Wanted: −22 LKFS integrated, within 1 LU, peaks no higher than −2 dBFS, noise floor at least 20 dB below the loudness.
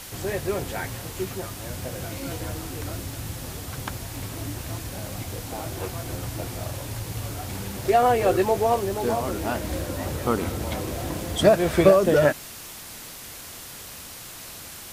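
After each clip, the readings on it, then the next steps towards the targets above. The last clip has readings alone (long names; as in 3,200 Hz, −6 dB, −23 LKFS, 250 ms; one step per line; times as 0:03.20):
background noise floor −40 dBFS; target noise floor −46 dBFS; integrated loudness −26.0 LKFS; sample peak −4.5 dBFS; target loudness −22.0 LKFS
→ broadband denoise 6 dB, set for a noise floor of −40 dBFS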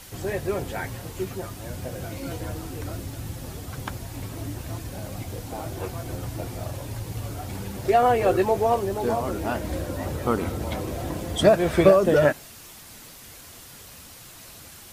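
background noise floor −45 dBFS; target noise floor −46 dBFS
→ broadband denoise 6 dB, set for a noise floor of −45 dBFS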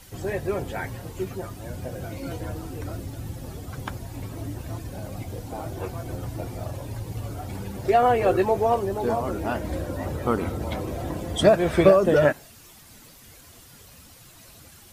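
background noise floor −50 dBFS; integrated loudness −26.0 LKFS; sample peak −4.5 dBFS; target loudness −22.0 LKFS
→ level +4 dB
brickwall limiter −2 dBFS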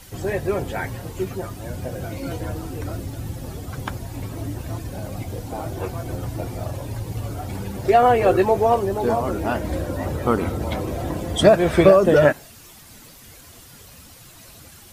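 integrated loudness −22.0 LKFS; sample peak −2.0 dBFS; background noise floor −46 dBFS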